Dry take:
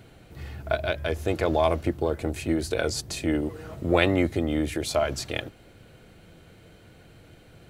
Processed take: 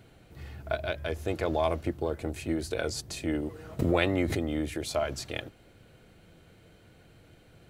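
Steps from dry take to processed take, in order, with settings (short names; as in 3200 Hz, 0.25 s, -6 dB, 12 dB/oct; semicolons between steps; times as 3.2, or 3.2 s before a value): 3.79–4.5 backwards sustainer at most 29 dB/s; gain -5 dB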